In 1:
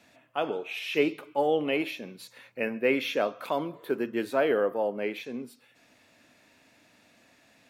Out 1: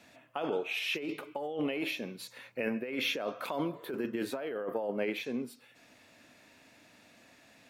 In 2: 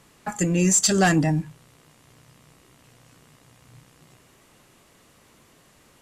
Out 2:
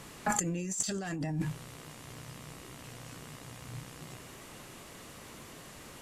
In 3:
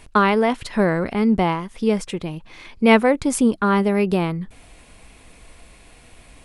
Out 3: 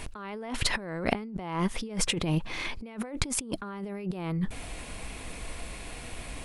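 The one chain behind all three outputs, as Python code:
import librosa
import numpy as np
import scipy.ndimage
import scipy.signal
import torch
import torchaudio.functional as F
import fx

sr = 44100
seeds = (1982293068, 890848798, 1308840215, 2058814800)

y = fx.over_compress(x, sr, threshold_db=-31.0, ratio=-1.0)
y = y * librosa.db_to_amplitude(-2.5)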